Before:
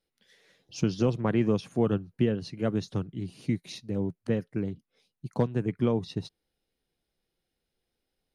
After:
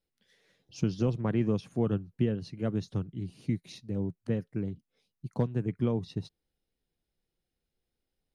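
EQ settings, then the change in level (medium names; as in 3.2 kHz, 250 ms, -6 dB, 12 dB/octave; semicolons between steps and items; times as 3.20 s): bass shelf 220 Hz +7 dB; -6.0 dB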